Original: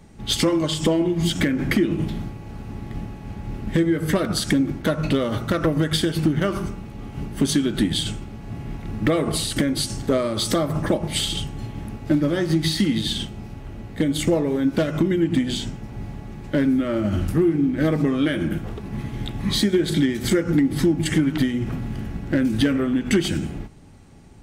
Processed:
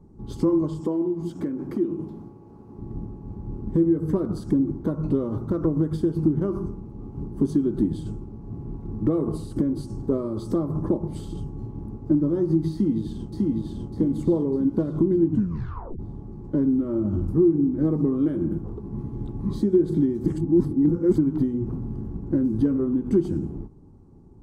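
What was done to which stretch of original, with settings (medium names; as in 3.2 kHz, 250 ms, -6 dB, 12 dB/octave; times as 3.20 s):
0.80–2.79 s: high-pass 400 Hz 6 dB/octave
12.72–13.73 s: echo throw 600 ms, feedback 45%, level -1.5 dB
15.27 s: tape stop 0.72 s
20.26–21.18 s: reverse
whole clip: FFT filter 250 Hz 0 dB, 370 Hz +4 dB, 640 Hz -11 dB, 1 kHz -3 dB, 1.9 kHz -27 dB, 3.4 kHz -28 dB, 4.8 kHz -21 dB; trim -2.5 dB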